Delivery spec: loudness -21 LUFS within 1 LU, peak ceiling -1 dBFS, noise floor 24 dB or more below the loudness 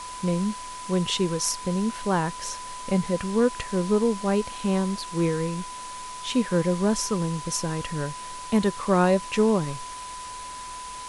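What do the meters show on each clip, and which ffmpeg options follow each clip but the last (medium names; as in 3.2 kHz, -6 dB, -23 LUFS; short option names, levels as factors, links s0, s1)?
steady tone 1 kHz; tone level -36 dBFS; noise floor -38 dBFS; noise floor target -50 dBFS; loudness -25.5 LUFS; peak level -9.5 dBFS; loudness target -21.0 LUFS
-> -af "bandreject=f=1000:w=30"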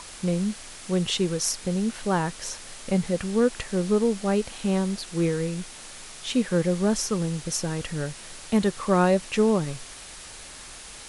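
steady tone not found; noise floor -43 dBFS; noise floor target -50 dBFS
-> -af "afftdn=nr=7:nf=-43"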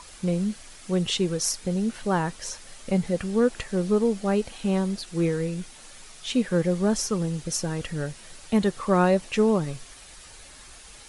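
noise floor -47 dBFS; noise floor target -50 dBFS
-> -af "afftdn=nr=6:nf=-47"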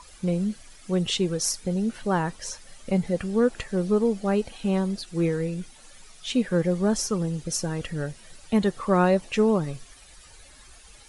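noise floor -50 dBFS; loudness -26.0 LUFS; peak level -9.5 dBFS; loudness target -21.0 LUFS
-> -af "volume=1.78"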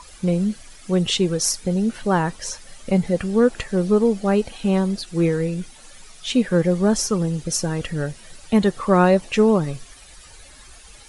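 loudness -21.0 LUFS; peak level -4.5 dBFS; noise floor -45 dBFS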